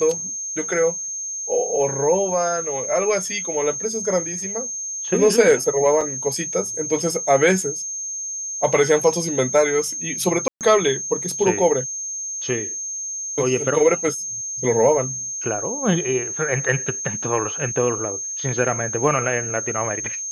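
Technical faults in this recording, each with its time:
tone 6400 Hz -26 dBFS
6.01 gap 3.9 ms
10.48–10.61 gap 0.128 s

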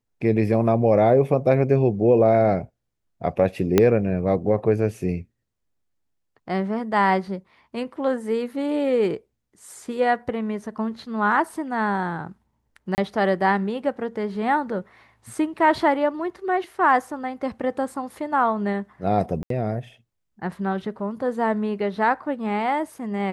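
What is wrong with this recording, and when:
3.78 pop -3 dBFS
12.95–12.98 gap 29 ms
19.43–19.5 gap 73 ms

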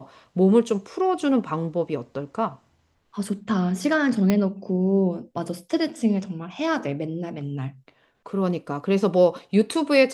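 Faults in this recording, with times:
4.3 pop -8 dBFS

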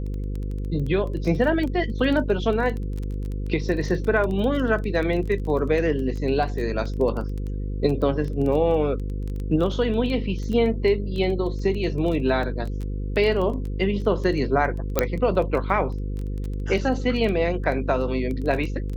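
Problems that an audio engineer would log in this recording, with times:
buzz 50 Hz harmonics 10 -28 dBFS
crackle 11/s -28 dBFS
14.99 pop -4 dBFS

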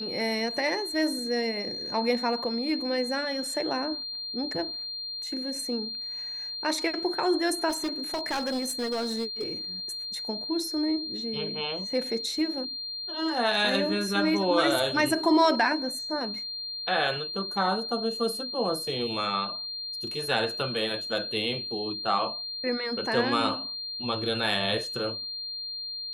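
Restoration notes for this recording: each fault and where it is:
tone 4200 Hz -33 dBFS
7.69–9.53 clipped -25.5 dBFS

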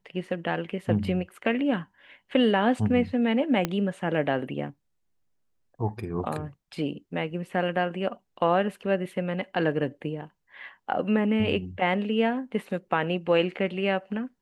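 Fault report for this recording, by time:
3.65 pop -11 dBFS

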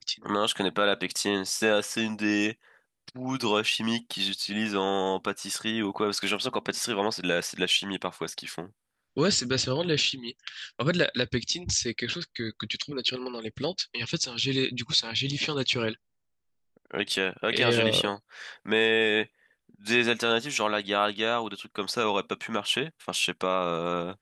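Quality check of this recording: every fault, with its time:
6.3 gap 2.5 ms

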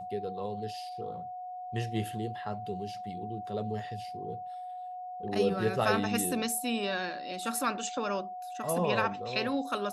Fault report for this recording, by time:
tone 730 Hz -38 dBFS

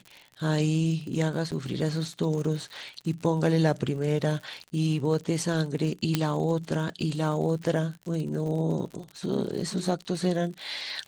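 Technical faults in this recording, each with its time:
crackle 61/s -35 dBFS
1.51–1.52 gap 8 ms
6.15 pop -9 dBFS

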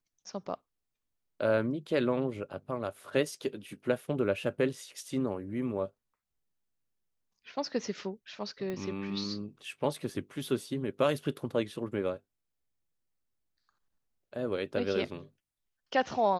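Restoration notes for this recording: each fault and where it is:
8.7 pop -24 dBFS

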